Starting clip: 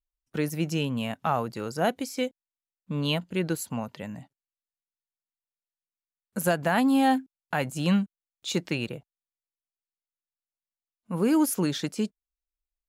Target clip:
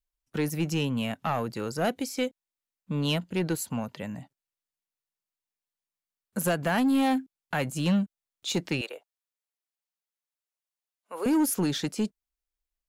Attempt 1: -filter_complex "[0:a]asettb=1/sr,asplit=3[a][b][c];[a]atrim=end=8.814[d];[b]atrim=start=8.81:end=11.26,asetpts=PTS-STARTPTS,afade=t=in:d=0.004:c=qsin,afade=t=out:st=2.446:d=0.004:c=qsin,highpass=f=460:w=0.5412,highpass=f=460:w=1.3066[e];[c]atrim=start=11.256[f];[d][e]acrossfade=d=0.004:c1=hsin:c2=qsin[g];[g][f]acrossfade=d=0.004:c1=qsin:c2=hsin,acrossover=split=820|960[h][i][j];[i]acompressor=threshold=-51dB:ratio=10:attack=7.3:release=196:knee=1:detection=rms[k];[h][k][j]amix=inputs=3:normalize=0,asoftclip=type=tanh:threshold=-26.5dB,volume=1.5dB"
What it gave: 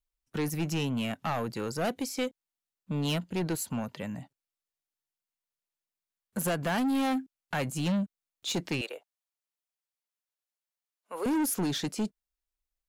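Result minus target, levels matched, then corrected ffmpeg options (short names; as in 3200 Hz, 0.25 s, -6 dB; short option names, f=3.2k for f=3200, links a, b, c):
soft clip: distortion +7 dB
-filter_complex "[0:a]asettb=1/sr,asplit=3[a][b][c];[a]atrim=end=8.814[d];[b]atrim=start=8.81:end=11.26,asetpts=PTS-STARTPTS,afade=t=in:d=0.004:c=qsin,afade=t=out:st=2.446:d=0.004:c=qsin,highpass=f=460:w=0.5412,highpass=f=460:w=1.3066[e];[c]atrim=start=11.256[f];[d][e]acrossfade=d=0.004:c1=hsin:c2=qsin[g];[g][f]acrossfade=d=0.004:c1=qsin:c2=hsin,acrossover=split=820|960[h][i][j];[i]acompressor=threshold=-51dB:ratio=10:attack=7.3:release=196:knee=1:detection=rms[k];[h][k][j]amix=inputs=3:normalize=0,asoftclip=type=tanh:threshold=-20dB,volume=1.5dB"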